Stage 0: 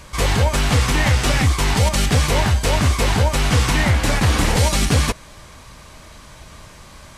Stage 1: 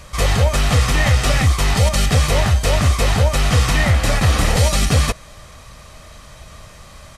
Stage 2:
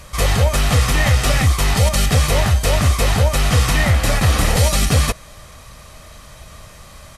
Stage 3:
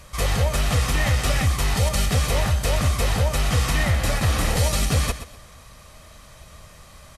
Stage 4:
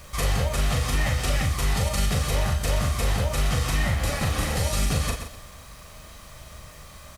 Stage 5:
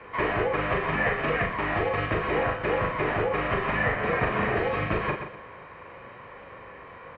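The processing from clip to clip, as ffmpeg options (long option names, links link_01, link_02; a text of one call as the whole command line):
ffmpeg -i in.wav -af "aecho=1:1:1.6:0.37" out.wav
ffmpeg -i in.wav -af "equalizer=frequency=12000:width_type=o:width=0.57:gain=6" out.wav
ffmpeg -i in.wav -af "aecho=1:1:124|248|372:0.251|0.0678|0.0183,volume=-6dB" out.wav
ffmpeg -i in.wav -filter_complex "[0:a]acompressor=threshold=-22dB:ratio=6,acrusher=bits=8:mix=0:aa=0.000001,asplit=2[link_01][link_02];[link_02]adelay=40,volume=-4.5dB[link_03];[link_01][link_03]amix=inputs=2:normalize=0" out.wav
ffmpeg -i in.wav -af "highpass=frequency=210:width_type=q:width=0.5412,highpass=frequency=210:width_type=q:width=1.307,lowpass=frequency=2500:width_type=q:width=0.5176,lowpass=frequency=2500:width_type=q:width=0.7071,lowpass=frequency=2500:width_type=q:width=1.932,afreqshift=-94,volume=5.5dB" out.wav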